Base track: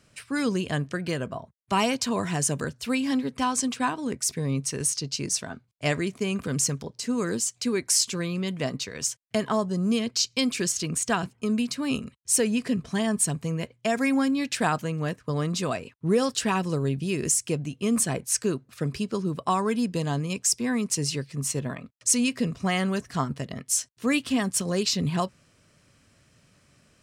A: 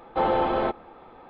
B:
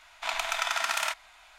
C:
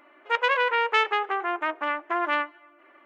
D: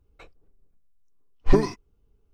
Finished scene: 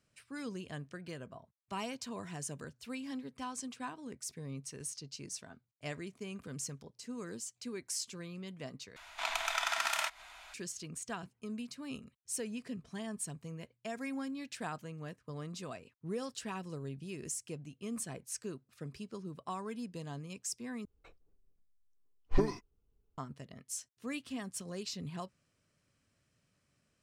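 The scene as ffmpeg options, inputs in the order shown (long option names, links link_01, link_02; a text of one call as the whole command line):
ffmpeg -i bed.wav -i cue0.wav -i cue1.wav -i cue2.wav -i cue3.wav -filter_complex "[0:a]volume=-16dB[link_01];[2:a]acompressor=mode=upward:threshold=-40dB:ratio=2.5:attack=3.2:release=140:knee=2.83:detection=peak[link_02];[link_01]asplit=3[link_03][link_04][link_05];[link_03]atrim=end=8.964[link_06];[link_02]atrim=end=1.58,asetpts=PTS-STARTPTS,volume=-4.5dB[link_07];[link_04]atrim=start=10.536:end=20.854[link_08];[4:a]atrim=end=2.33,asetpts=PTS-STARTPTS,volume=-10.5dB[link_09];[link_05]atrim=start=23.176[link_10];[link_06][link_07]acrossfade=duration=0.004:curve1=hsin:curve2=hsin[link_11];[link_11][link_08]acrossfade=duration=0.004:curve1=hsin:curve2=hsin[link_12];[link_12][link_09]acrossfade=duration=0.004:curve1=hsin:curve2=hsin[link_13];[link_13][link_10]acrossfade=duration=0.004:curve1=hsin:curve2=hsin" out.wav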